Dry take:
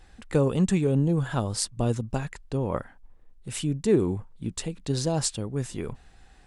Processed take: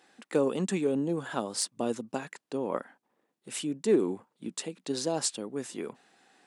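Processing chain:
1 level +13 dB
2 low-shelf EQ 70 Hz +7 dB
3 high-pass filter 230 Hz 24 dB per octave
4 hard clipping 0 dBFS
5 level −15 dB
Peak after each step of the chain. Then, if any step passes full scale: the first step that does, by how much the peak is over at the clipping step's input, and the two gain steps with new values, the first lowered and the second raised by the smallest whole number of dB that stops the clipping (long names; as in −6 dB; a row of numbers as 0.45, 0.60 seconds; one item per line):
+5.5, +5.5, +5.5, 0.0, −15.0 dBFS
step 1, 5.5 dB
step 1 +7 dB, step 5 −9 dB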